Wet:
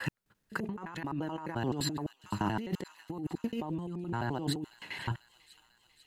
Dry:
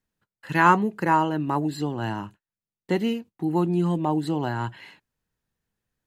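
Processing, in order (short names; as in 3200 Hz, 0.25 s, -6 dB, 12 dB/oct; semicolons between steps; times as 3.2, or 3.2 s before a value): slices in reverse order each 86 ms, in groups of 6; thin delay 0.495 s, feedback 62%, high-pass 3600 Hz, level -16 dB; negative-ratio compressor -33 dBFS, ratio -1; gain -3 dB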